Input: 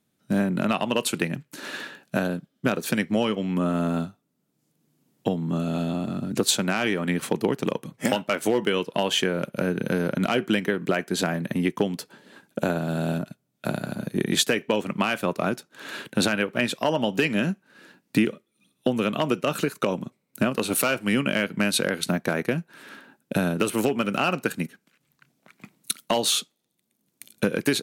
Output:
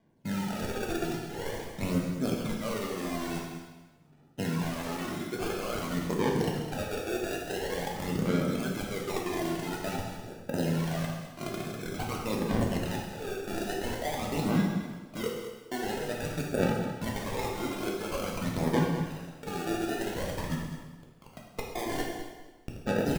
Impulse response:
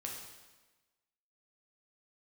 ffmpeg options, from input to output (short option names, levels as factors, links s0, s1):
-filter_complex "[0:a]areverse,acompressor=threshold=0.0316:ratio=10,areverse,atempo=1.2,acrusher=samples=33:mix=1:aa=0.000001:lfo=1:lforange=19.8:lforate=0.32,aphaser=in_gain=1:out_gain=1:delay=2.9:decay=0.62:speed=0.48:type=sinusoidal,aecho=1:1:207:0.251[s0];[1:a]atrim=start_sample=2205[s1];[s0][s1]afir=irnorm=-1:irlink=0,volume=1.12"